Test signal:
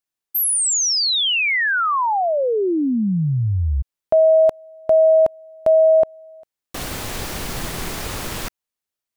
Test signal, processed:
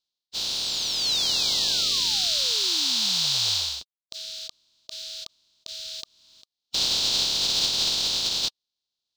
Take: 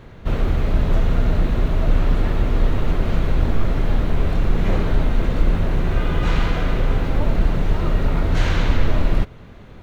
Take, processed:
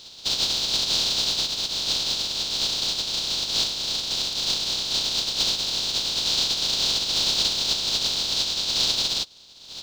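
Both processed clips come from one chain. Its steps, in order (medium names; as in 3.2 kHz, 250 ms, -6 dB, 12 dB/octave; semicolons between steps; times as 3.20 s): spectral contrast reduction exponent 0.1; resonant high shelf 2.8 kHz +13 dB, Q 3; level rider; distance through air 180 m; band-stop 1.2 kHz, Q 17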